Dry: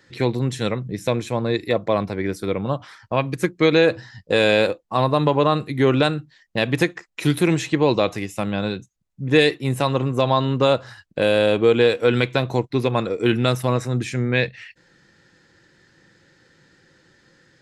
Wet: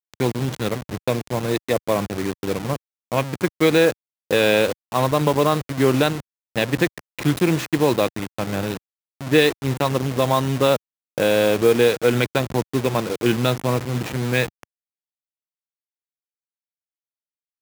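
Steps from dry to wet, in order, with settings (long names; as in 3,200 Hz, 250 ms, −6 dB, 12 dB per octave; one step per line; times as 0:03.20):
hold until the input has moved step −23 dBFS
high-pass filter 95 Hz 12 dB per octave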